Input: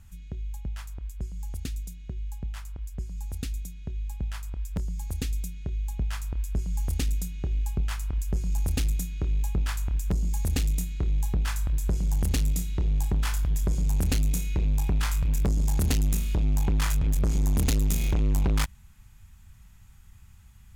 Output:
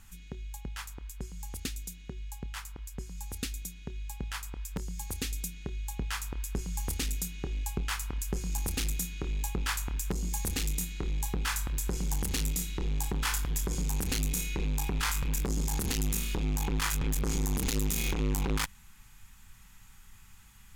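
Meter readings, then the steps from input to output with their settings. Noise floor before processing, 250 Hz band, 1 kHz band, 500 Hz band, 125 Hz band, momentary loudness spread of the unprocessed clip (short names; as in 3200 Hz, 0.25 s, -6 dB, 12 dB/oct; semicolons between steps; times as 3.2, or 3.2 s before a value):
-51 dBFS, -3.0 dB, +1.5 dB, -1.0 dB, -7.0 dB, 12 LU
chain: bell 73 Hz -14.5 dB 2.7 oct; limiter -25 dBFS, peak gain reduction 10 dB; bell 630 Hz -13 dB 0.21 oct; gain +5.5 dB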